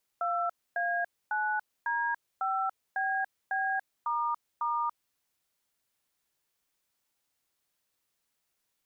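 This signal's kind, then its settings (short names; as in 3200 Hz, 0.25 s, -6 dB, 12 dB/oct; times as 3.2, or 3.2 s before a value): DTMF "2A9D5BB**", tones 0.286 s, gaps 0.264 s, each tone -30 dBFS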